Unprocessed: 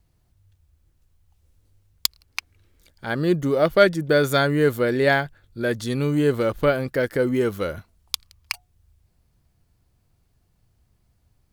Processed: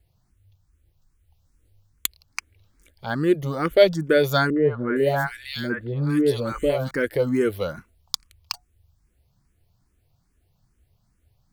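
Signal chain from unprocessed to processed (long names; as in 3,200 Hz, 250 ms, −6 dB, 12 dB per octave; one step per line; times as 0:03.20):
0:04.50–0:06.91: three-band delay without the direct sound lows, mids, highs 60/460 ms, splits 650/2,000 Hz
frequency shifter mixed with the dry sound +2.4 Hz
level +2 dB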